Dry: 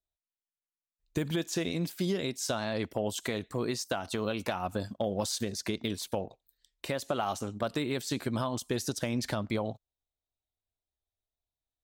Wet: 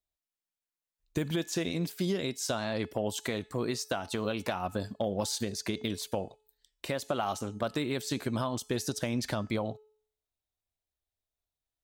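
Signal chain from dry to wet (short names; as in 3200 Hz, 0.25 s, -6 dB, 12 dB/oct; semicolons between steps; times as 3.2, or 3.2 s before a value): de-hum 429.1 Hz, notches 23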